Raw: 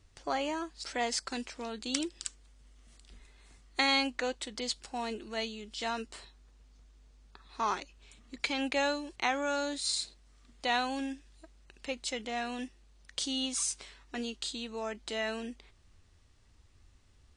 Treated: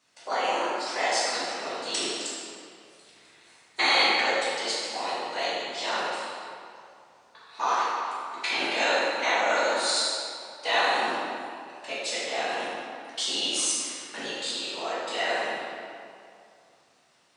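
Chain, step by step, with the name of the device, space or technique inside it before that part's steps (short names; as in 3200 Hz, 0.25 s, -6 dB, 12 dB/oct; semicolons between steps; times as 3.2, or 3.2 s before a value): whispering ghost (whisperiser; HPF 570 Hz 12 dB/oct; reverb RT60 2.5 s, pre-delay 7 ms, DRR -9 dB)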